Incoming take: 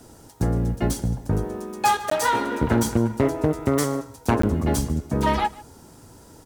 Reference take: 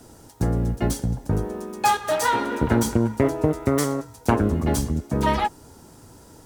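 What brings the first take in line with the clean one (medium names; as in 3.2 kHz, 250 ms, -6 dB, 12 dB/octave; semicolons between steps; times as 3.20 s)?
clip repair -11.5 dBFS; de-click; interpolate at 2.10/4.42 s, 14 ms; inverse comb 148 ms -20.5 dB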